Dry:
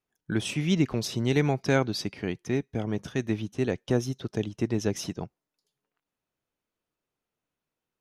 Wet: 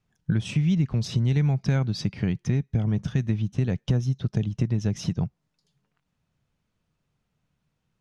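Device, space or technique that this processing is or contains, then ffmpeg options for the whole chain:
jukebox: -af "lowpass=7200,lowshelf=f=230:t=q:w=1.5:g=11,acompressor=threshold=0.0316:ratio=4,volume=2.24"

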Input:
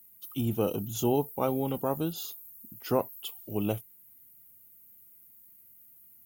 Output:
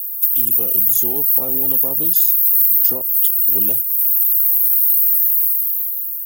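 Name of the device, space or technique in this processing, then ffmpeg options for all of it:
FM broadcast chain: -filter_complex "[0:a]highpass=f=75:w=0.5412,highpass=f=75:w=1.3066,dynaudnorm=f=210:g=9:m=4.22,acrossover=split=180|660[s0][s1][s2];[s0]acompressor=threshold=0.0141:ratio=4[s3];[s1]acompressor=threshold=0.1:ratio=4[s4];[s2]acompressor=threshold=0.0112:ratio=4[s5];[s3][s4][s5]amix=inputs=3:normalize=0,aemphasis=mode=production:type=75fm,alimiter=limit=0.224:level=0:latency=1:release=192,asoftclip=type=hard:threshold=0.188,lowpass=f=15000:w=0.5412,lowpass=f=15000:w=1.3066,aemphasis=mode=production:type=75fm,volume=0.596"

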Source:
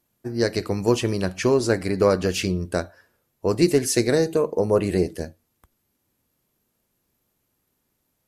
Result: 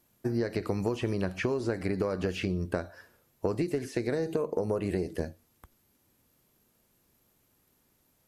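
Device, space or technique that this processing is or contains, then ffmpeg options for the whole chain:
serial compression, leveller first: -filter_complex "[0:a]acompressor=threshold=0.112:ratio=6,acompressor=threshold=0.0316:ratio=6,acrossover=split=3000[s0][s1];[s1]acompressor=threshold=0.002:ratio=4:attack=1:release=60[s2];[s0][s2]amix=inputs=2:normalize=0,volume=1.5"

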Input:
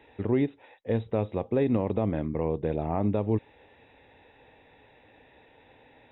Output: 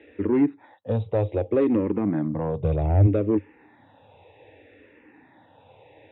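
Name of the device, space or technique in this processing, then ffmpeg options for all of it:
barber-pole phaser into a guitar amplifier: -filter_complex "[0:a]asplit=2[s0][s1];[s1]afreqshift=-0.64[s2];[s0][s2]amix=inputs=2:normalize=1,asoftclip=type=tanh:threshold=0.075,highpass=92,equalizer=f=95:t=q:w=4:g=9,equalizer=f=310:t=q:w=4:g=8,equalizer=f=540:t=q:w=4:g=4,lowpass=f=3500:w=0.5412,lowpass=f=3500:w=1.3066,asplit=3[s3][s4][s5];[s3]afade=t=out:st=2.61:d=0.02[s6];[s4]asubboost=boost=8.5:cutoff=120,afade=t=in:st=2.61:d=0.02,afade=t=out:st=3.06:d=0.02[s7];[s5]afade=t=in:st=3.06:d=0.02[s8];[s6][s7][s8]amix=inputs=3:normalize=0,volume=1.78"

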